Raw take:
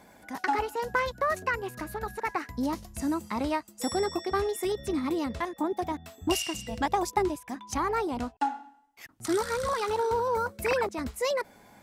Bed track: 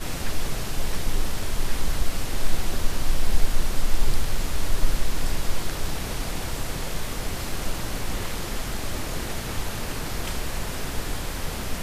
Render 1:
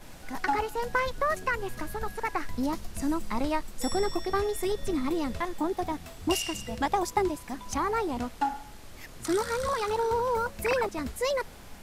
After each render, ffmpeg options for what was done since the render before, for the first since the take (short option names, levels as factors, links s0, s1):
-filter_complex "[1:a]volume=0.126[s0];[0:a][s0]amix=inputs=2:normalize=0"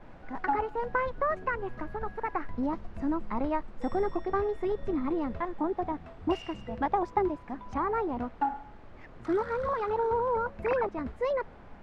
-af "lowpass=1500,lowshelf=f=210:g=-3"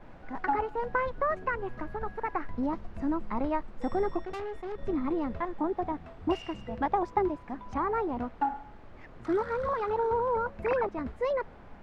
-filter_complex "[0:a]asettb=1/sr,asplit=3[s0][s1][s2];[s0]atrim=end=4.214[s3];[s1]atrim=start=4.21:end=4.8,asetpts=PTS-STARTPTS,afade=t=in:d=0.004:c=qsin,afade=t=out:st=0.586:d=0.004:c=qsin,aeval=exprs='(tanh(50.1*val(0)+0.6)-tanh(0.6))/50.1':c=same[s4];[s2]atrim=start=4.796[s5];[s3][s4]acrossfade=d=0.004:c1=hsin:c2=qsin[s6];[s6][s5]acrossfade=d=0.004:c1=qsin:c2=hsin"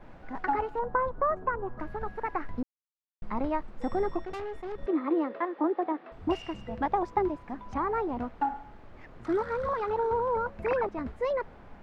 -filter_complex "[0:a]asettb=1/sr,asplit=3[s0][s1][s2];[s0]atrim=end=0.794[s3];[s1]atrim=start=0.79:end=1.8,asetpts=PTS-STARTPTS,afade=t=in:d=0.004:c=qsin,afade=t=out:st=1.006:d=0.004:c=qsin,highshelf=f=1700:t=q:w=1.5:g=-11.5[s4];[s2]atrim=start=1.796[s5];[s3][s4]acrossfade=d=0.004:c1=hsin:c2=qsin[s6];[s6][s5]acrossfade=d=0.004:c1=qsin:c2=hsin,asettb=1/sr,asplit=3[s7][s8][s9];[s7]atrim=end=4.864[s10];[s8]atrim=start=4.86:end=6.12,asetpts=PTS-STARTPTS,afade=t=in:d=0.004:c=qsin,afade=t=out:st=1.256:d=0.004:c=qsin,highpass=f=290:w=0.5412,highpass=f=290:w=1.3066,equalizer=f=320:t=q:w=4:g=6,equalizer=f=530:t=q:w=4:g=6,equalizer=f=1200:t=q:w=4:g=4,equalizer=f=1800:t=q:w=4:g=4,lowpass=f=4400:w=0.5412,lowpass=f=4400:w=1.3066[s11];[s9]atrim=start=6.116[s12];[s10][s11]acrossfade=d=0.004:c1=hsin:c2=qsin[s13];[s13][s12]acrossfade=d=0.004:c1=qsin:c2=hsin,asplit=3[s14][s15][s16];[s14]atrim=end=2.63,asetpts=PTS-STARTPTS,afade=t=out:st=2.626:d=0.004:c=hsin[s17];[s15]atrim=start=2.63:end=3.22,asetpts=PTS-STARTPTS,volume=0[s18];[s16]atrim=start=3.22,asetpts=PTS-STARTPTS,afade=t=in:d=0.004:c=hsin[s19];[s17][s18][s19]concat=n=3:v=0:a=1"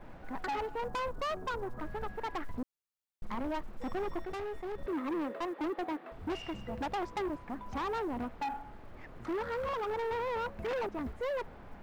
-af "asoftclip=type=tanh:threshold=0.0266,acrusher=bits=9:mode=log:mix=0:aa=0.000001"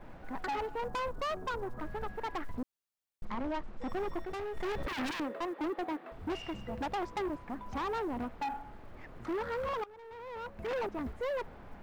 -filter_complex "[0:a]asettb=1/sr,asplit=3[s0][s1][s2];[s0]atrim=end=3.254[s3];[s1]atrim=start=3.25:end=3.89,asetpts=PTS-STARTPTS,afade=t=in:d=0.004:c=qsin,afade=t=out:st=0.636:d=0.004:c=qsin,lowpass=6200[s4];[s2]atrim=start=3.886[s5];[s3][s4]acrossfade=d=0.004:c1=hsin:c2=qsin[s6];[s6][s5]acrossfade=d=0.004:c1=qsin:c2=hsin,asettb=1/sr,asplit=3[s7][s8][s9];[s7]atrim=end=4.574[s10];[s8]atrim=start=4.57:end=5.2,asetpts=PTS-STARTPTS,afade=t=in:d=0.004:c=qsin,afade=t=out:st=0.626:d=0.004:c=qsin,aeval=exprs='0.0282*sin(PI/2*2.24*val(0)/0.0282)':c=same[s11];[s9]atrim=start=5.196[s12];[s10][s11]acrossfade=d=0.004:c1=hsin:c2=qsin[s13];[s13][s12]acrossfade=d=0.004:c1=qsin:c2=hsin,asplit=2[s14][s15];[s14]atrim=end=9.84,asetpts=PTS-STARTPTS,afade=t=out:st=9.836:d=0.004:c=hsin:silence=0.11885[s16];[s15]atrim=start=9.84,asetpts=PTS-STARTPTS,afade=t=in:d=0.91:c=qua:silence=0.11885[s17];[s16][s17]concat=n=2:v=0:a=1"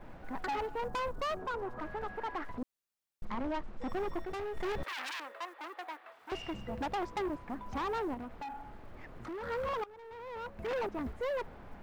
-filter_complex "[0:a]asettb=1/sr,asplit=3[s0][s1][s2];[s0]atrim=end=1.394[s3];[s1]atrim=start=1.39:end=2.62,asetpts=PTS-STARTPTS,afade=t=in:d=0.004:c=qsin,afade=t=out:st=1.226:d=0.004:c=qsin,asplit=2[s4][s5];[s5]highpass=f=720:p=1,volume=4.47,asoftclip=type=tanh:threshold=0.0282[s6];[s4][s6]amix=inputs=2:normalize=0,lowpass=f=1800:p=1,volume=0.501[s7];[s2]atrim=start=2.616[s8];[s3][s7]acrossfade=d=0.004:c1=hsin:c2=qsin[s9];[s9][s8]acrossfade=d=0.004:c1=qsin:c2=hsin,asettb=1/sr,asplit=3[s10][s11][s12];[s10]atrim=end=4.834[s13];[s11]atrim=start=4.83:end=6.32,asetpts=PTS-STARTPTS,afade=t=in:d=0.004:c=qsin,afade=t=out:st=1.486:d=0.004:c=qsin,highpass=940[s14];[s12]atrim=start=6.316[s15];[s13][s14]acrossfade=d=0.004:c1=hsin:c2=qsin[s16];[s16][s15]acrossfade=d=0.004:c1=qsin:c2=hsin,asettb=1/sr,asplit=3[s17][s18][s19];[s17]atrim=end=8.144[s20];[s18]atrim=start=8.14:end=9.43,asetpts=PTS-STARTPTS,afade=t=in:d=0.004:c=qsin,afade=t=out:st=1.286:d=0.004:c=qsin,acompressor=threshold=0.01:ratio=6:attack=3.2:release=140:knee=1:detection=peak[s21];[s19]atrim=start=9.426[s22];[s20][s21]acrossfade=d=0.004:c1=hsin:c2=qsin[s23];[s23][s22]acrossfade=d=0.004:c1=qsin:c2=hsin"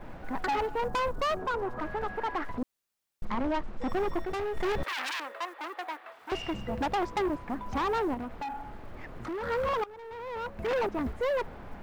-af "volume=2"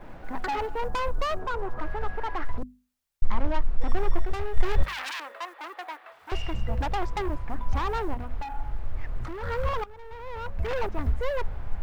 -af "bandreject=f=50:t=h:w=6,bandreject=f=100:t=h:w=6,bandreject=f=150:t=h:w=6,bandreject=f=200:t=h:w=6,bandreject=f=250:t=h:w=6,asubboost=boost=8.5:cutoff=85"